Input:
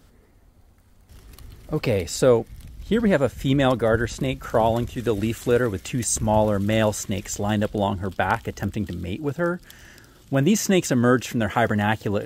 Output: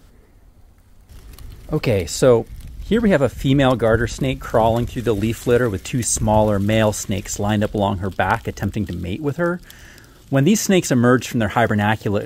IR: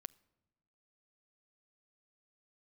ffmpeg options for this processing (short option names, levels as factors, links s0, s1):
-filter_complex "[0:a]asplit=2[s0][s1];[1:a]atrim=start_sample=2205,atrim=end_sample=3528,lowshelf=f=64:g=9.5[s2];[s1][s2]afir=irnorm=-1:irlink=0,volume=1.41[s3];[s0][s3]amix=inputs=2:normalize=0,volume=0.891"